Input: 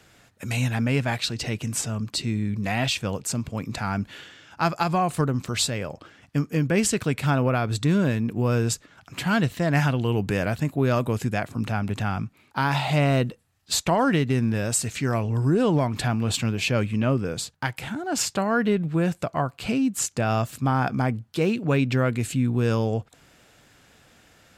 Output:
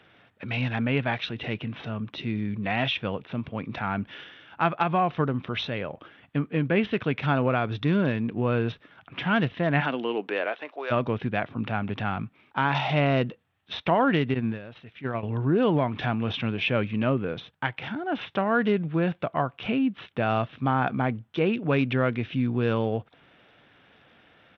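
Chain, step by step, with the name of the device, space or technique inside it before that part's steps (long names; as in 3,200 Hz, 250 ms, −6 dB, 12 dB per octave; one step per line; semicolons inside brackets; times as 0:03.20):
0:09.80–0:10.90: high-pass filter 190 Hz → 570 Hz 24 dB per octave
0:14.34–0:15.23: noise gate −22 dBFS, range −13 dB
Bluetooth headset (high-pass filter 170 Hz 6 dB per octave; downsampling to 8,000 Hz; SBC 64 kbit/s 32,000 Hz)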